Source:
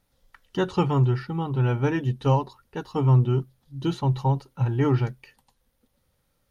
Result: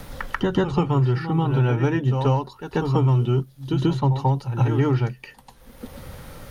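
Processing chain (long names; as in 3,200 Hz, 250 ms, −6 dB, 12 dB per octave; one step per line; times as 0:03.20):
tape wow and flutter 25 cents
in parallel at −11 dB: asymmetric clip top −18.5 dBFS
on the sum: backwards echo 139 ms −11 dB
multiband upward and downward compressor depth 100%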